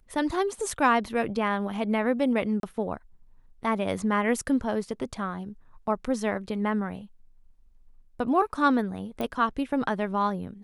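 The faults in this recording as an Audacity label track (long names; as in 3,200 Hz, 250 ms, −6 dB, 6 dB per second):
2.600000	2.630000	drop-out 32 ms
9.210000	9.210000	click −19 dBFS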